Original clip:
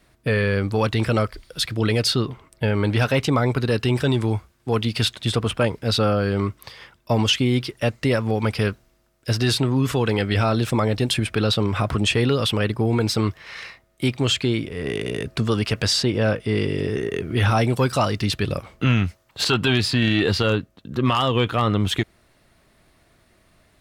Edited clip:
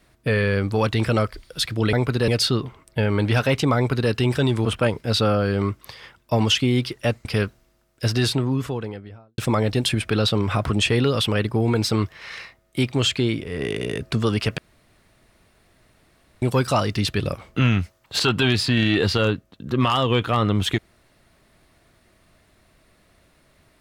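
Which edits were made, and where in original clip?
3.41–3.76 s: copy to 1.93 s
4.30–5.43 s: delete
8.03–8.50 s: delete
9.34–10.63 s: studio fade out
15.83–17.67 s: room tone

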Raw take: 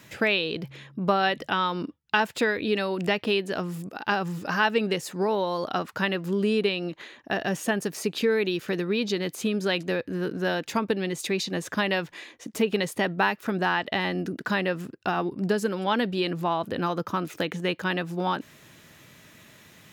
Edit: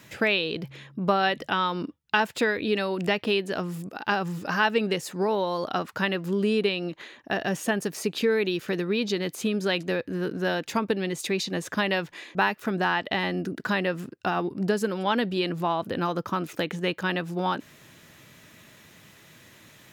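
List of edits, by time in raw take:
12.35–13.16 s: delete

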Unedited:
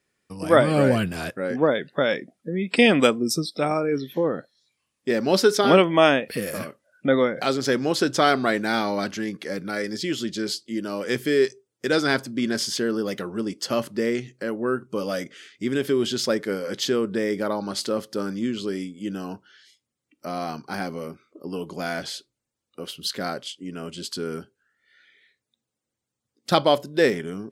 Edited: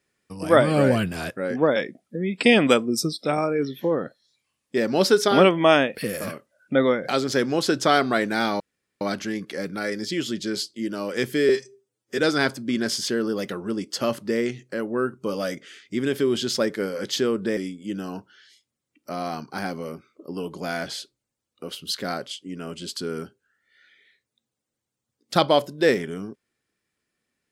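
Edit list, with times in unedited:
1.76–2.09 s: delete
8.93 s: insert room tone 0.41 s
11.41–11.87 s: stretch 1.5×
17.26–18.73 s: delete

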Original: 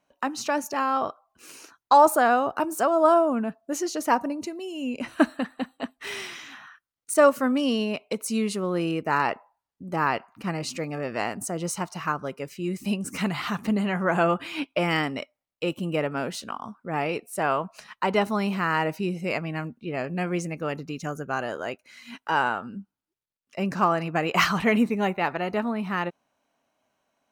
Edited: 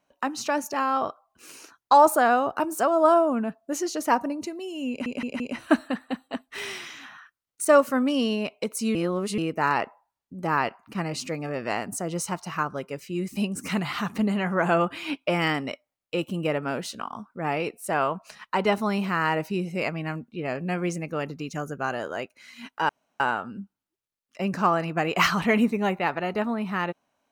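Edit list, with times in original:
4.89 s: stutter 0.17 s, 4 plays
8.44–8.87 s: reverse
22.38 s: insert room tone 0.31 s

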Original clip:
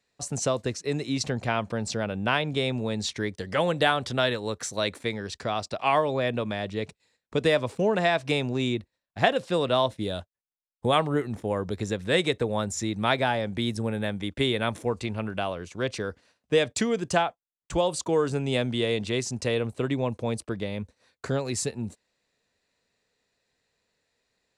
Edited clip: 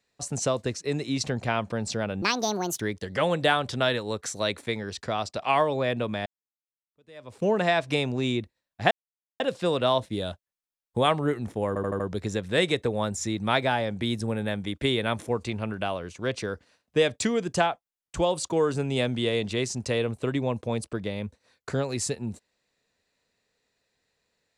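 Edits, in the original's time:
2.22–3.17 s: speed 164%
6.63–7.81 s: fade in exponential
9.28 s: insert silence 0.49 s
11.56 s: stutter 0.08 s, 5 plays

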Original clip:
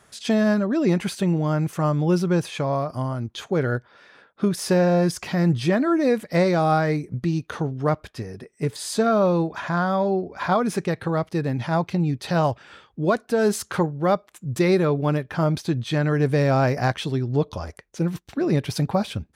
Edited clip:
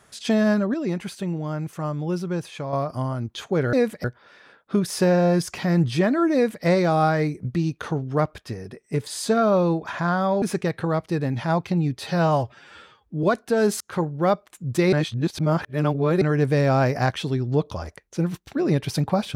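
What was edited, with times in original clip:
0.74–2.73 s: gain -6 dB
6.03–6.34 s: copy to 3.73 s
10.11–10.65 s: delete
12.22–13.05 s: stretch 1.5×
13.62–13.88 s: fade in
14.74–16.03 s: reverse

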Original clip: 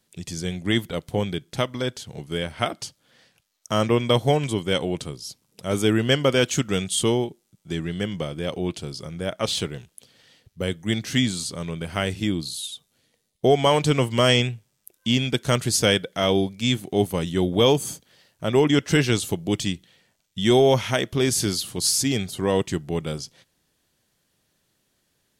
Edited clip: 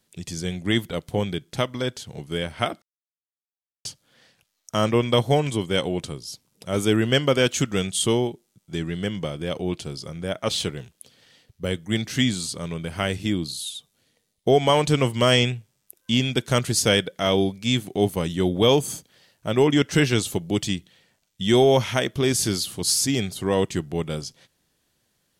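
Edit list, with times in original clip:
2.82 s: insert silence 1.03 s

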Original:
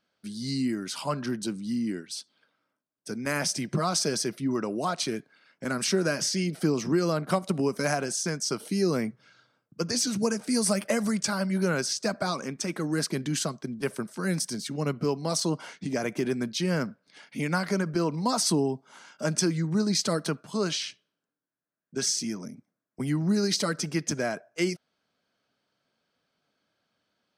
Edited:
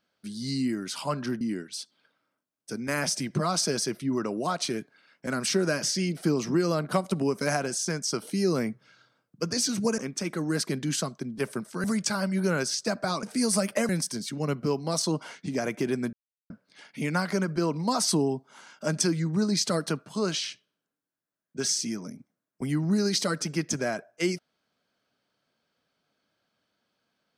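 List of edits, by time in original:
1.41–1.79 s: delete
10.36–11.02 s: swap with 12.41–14.27 s
16.51–16.88 s: mute

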